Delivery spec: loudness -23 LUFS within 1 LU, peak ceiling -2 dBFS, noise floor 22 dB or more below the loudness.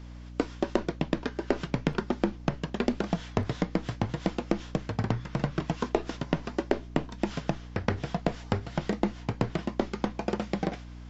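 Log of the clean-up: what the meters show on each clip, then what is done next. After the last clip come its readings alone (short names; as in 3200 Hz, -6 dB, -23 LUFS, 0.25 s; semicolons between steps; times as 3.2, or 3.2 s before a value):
hum 60 Hz; harmonics up to 300 Hz; hum level -40 dBFS; loudness -32.0 LUFS; peak -8.5 dBFS; loudness target -23.0 LUFS
-> de-hum 60 Hz, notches 5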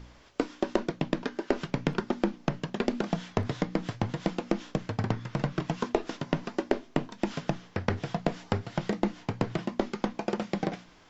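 hum none; loudness -32.5 LUFS; peak -9.0 dBFS; loudness target -23.0 LUFS
-> gain +9.5 dB; limiter -2 dBFS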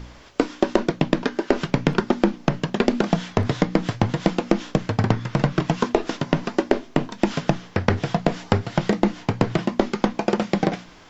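loudness -23.5 LUFS; peak -2.0 dBFS; noise floor -46 dBFS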